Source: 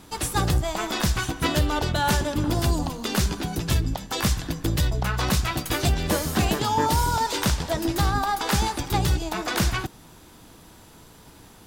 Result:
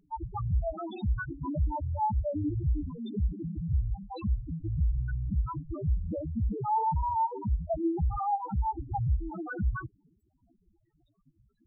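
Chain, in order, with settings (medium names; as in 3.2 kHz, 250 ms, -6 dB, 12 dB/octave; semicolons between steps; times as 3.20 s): bit crusher 7-bit; hard clipper -20 dBFS, distortion -12 dB; loudest bins only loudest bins 2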